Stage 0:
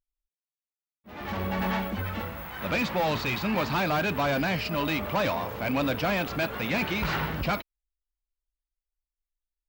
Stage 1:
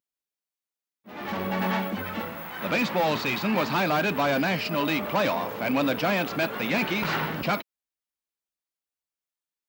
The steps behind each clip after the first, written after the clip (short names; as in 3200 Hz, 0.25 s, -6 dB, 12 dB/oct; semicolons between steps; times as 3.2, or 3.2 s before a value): Chebyshev high-pass 200 Hz, order 2; gain +3 dB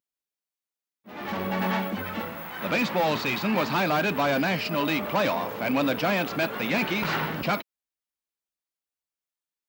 nothing audible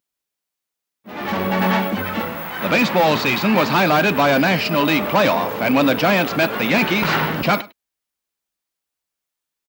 echo 0.103 s -20.5 dB; gain +8.5 dB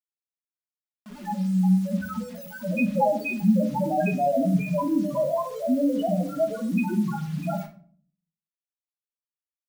loudest bins only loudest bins 1; bit-crush 8-bit; shoebox room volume 460 m³, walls furnished, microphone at 1.4 m